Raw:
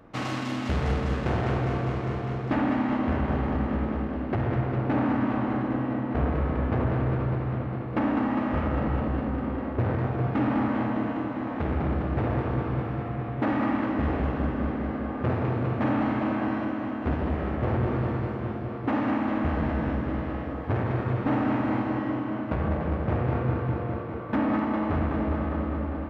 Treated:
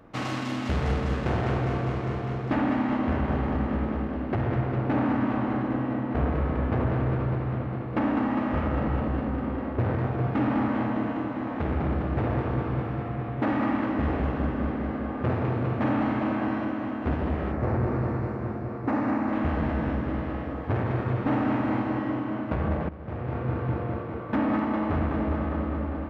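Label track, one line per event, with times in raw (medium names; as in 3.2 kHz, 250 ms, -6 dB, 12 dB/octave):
17.520000	19.330000	peaking EQ 3.2 kHz -12 dB 0.56 oct
22.890000	23.720000	fade in, from -16.5 dB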